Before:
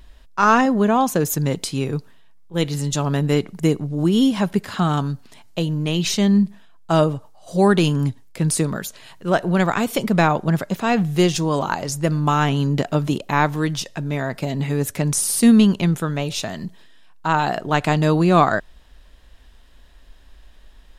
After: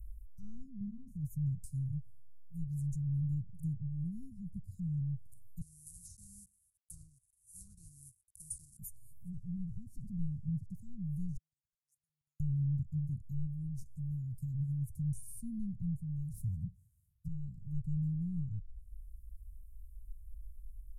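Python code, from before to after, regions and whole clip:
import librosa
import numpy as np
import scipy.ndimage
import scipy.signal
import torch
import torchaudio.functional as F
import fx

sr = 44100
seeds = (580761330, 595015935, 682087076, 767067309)

y = fx.chain(x, sr, fx.lowpass(hz=2300.0, slope=6),
    fx.doubler(ms=35.0, db=-3.0), at=(0.77, 1.19))
y = fx.chain(y, sr, fx.block_float(bits=3),
    fx.highpass(hz=750.0, slope=12),
    fx.resample_bad(factor=2, down='none', up='filtered'), at=(5.61, 8.79))
y = fx.chain(y, sr, fx.crossing_spikes(level_db=-15.0),
    fx.lowpass(hz=3700.0, slope=12), at=(9.39, 10.76))
y = fx.chain(y, sr, fx.ladder_bandpass(hz=1800.0, resonance_pct=75),
    fx.level_steps(step_db=14), at=(11.37, 12.4))
y = fx.chain(y, sr, fx.low_shelf(hz=230.0, db=10.0),
    fx.running_max(window=5), at=(16.33, 17.28))
y = fx.env_lowpass_down(y, sr, base_hz=2600.0, full_db=-16.5)
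y = scipy.signal.sosfilt(scipy.signal.cheby2(4, 70, [430.0, 3400.0], 'bandstop', fs=sr, output='sos'), y)
y = fx.peak_eq(y, sr, hz=580.0, db=-4.5, octaves=1.7)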